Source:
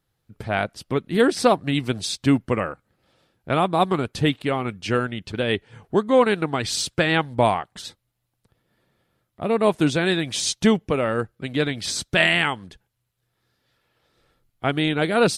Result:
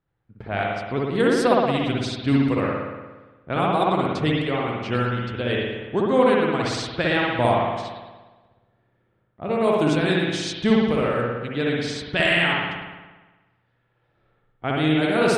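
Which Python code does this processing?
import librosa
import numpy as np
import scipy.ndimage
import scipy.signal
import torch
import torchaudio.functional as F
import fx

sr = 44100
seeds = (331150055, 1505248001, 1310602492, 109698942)

y = fx.rev_spring(x, sr, rt60_s=1.3, pass_ms=(58,), chirp_ms=55, drr_db=-3.0)
y = fx.env_lowpass(y, sr, base_hz=2100.0, full_db=-10.5)
y = y * 10.0 ** (-4.5 / 20.0)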